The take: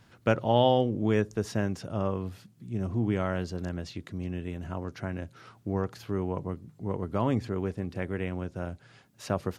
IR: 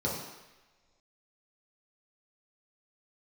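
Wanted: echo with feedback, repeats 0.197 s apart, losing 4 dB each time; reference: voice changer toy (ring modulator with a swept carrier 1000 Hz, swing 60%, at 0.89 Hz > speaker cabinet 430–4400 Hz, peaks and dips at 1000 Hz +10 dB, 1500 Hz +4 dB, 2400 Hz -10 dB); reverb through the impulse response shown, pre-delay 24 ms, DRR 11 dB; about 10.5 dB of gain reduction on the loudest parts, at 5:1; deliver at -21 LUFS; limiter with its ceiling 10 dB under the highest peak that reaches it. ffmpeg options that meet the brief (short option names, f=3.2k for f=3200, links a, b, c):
-filter_complex "[0:a]acompressor=threshold=-29dB:ratio=5,alimiter=limit=-24dB:level=0:latency=1,aecho=1:1:197|394|591|788|985|1182|1379|1576|1773:0.631|0.398|0.25|0.158|0.0994|0.0626|0.0394|0.0249|0.0157,asplit=2[a][b];[1:a]atrim=start_sample=2205,adelay=24[c];[b][c]afir=irnorm=-1:irlink=0,volume=-19dB[d];[a][d]amix=inputs=2:normalize=0,aeval=exprs='val(0)*sin(2*PI*1000*n/s+1000*0.6/0.89*sin(2*PI*0.89*n/s))':c=same,highpass=430,equalizer=f=1k:t=q:w=4:g=10,equalizer=f=1.5k:t=q:w=4:g=4,equalizer=f=2.4k:t=q:w=4:g=-10,lowpass=f=4.4k:w=0.5412,lowpass=f=4.4k:w=1.3066,volume=12dB"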